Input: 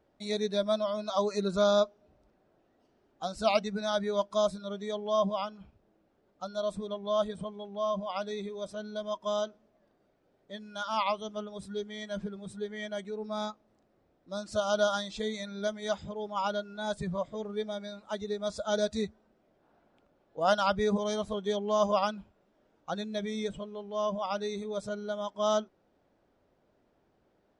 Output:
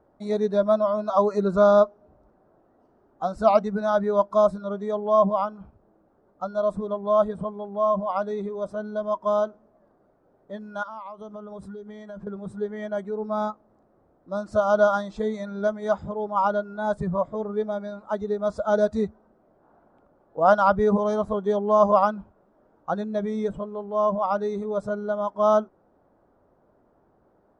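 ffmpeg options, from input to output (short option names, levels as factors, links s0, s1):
-filter_complex "[0:a]asettb=1/sr,asplit=3[s0][s1][s2];[s0]atrim=end=10.834[s3];[s1]atrim=start=10.83:end=12.27,asetpts=PTS-STARTPTS,afade=t=in:d=0.004:c=qsin,afade=t=out:st=1.436:d=0.004:c=qsin,acompressor=threshold=0.00794:ratio=20:attack=3.2:release=140:knee=1:detection=peak[s4];[s2]atrim=start=12.266[s5];[s3][s4]acrossfade=d=0.004:c1=hsin:c2=qsin[s6];[s6][s5]acrossfade=d=0.004:c1=qsin:c2=hsin,highshelf=f=1800:t=q:w=1.5:g=-13.5,volume=2.24"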